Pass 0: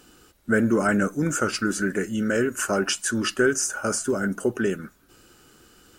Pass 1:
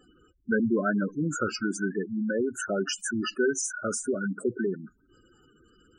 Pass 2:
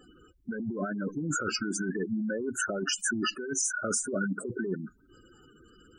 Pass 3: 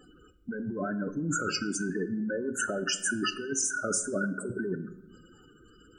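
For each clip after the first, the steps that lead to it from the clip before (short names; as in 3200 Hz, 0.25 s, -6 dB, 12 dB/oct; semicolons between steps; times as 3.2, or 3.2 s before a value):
spectral gate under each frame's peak -10 dB strong; gain -3.5 dB
negative-ratio compressor -31 dBFS, ratio -1
shoebox room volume 380 m³, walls mixed, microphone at 0.35 m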